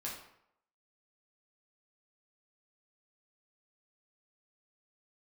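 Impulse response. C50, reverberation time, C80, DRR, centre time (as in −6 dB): 4.0 dB, 0.75 s, 7.5 dB, −5.0 dB, 39 ms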